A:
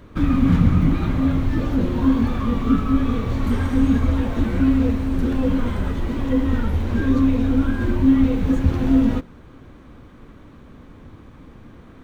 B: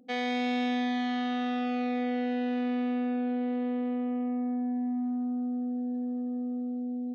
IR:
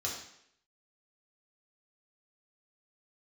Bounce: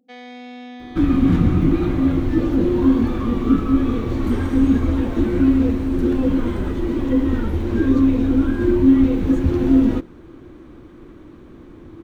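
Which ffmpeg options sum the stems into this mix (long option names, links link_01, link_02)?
-filter_complex "[0:a]equalizer=frequency=340:width=3.9:gain=15,adelay=800,volume=-1.5dB[link_01];[1:a]volume=-7.5dB[link_02];[link_01][link_02]amix=inputs=2:normalize=0"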